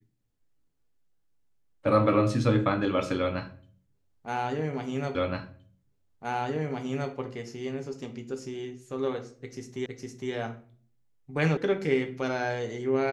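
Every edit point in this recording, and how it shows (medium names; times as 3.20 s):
5.15 s: repeat of the last 1.97 s
9.86 s: repeat of the last 0.46 s
11.57 s: sound stops dead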